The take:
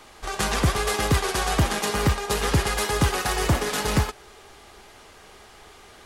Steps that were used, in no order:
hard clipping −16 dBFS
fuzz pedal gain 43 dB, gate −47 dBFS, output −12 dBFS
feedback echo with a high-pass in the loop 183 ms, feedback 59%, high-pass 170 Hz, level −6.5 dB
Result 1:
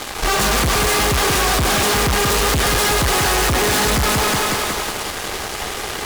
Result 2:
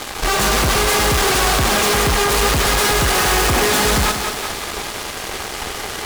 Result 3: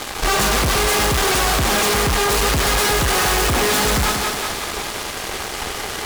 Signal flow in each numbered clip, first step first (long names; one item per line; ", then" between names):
feedback echo with a high-pass in the loop, then fuzz pedal, then hard clipping
fuzz pedal, then hard clipping, then feedback echo with a high-pass in the loop
fuzz pedal, then feedback echo with a high-pass in the loop, then hard clipping